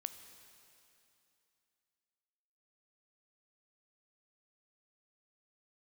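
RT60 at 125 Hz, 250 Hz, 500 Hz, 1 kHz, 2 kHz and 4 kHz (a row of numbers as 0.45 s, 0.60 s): 2.8 s, 3.0 s, 2.8 s, 2.8 s, 2.8 s, 2.8 s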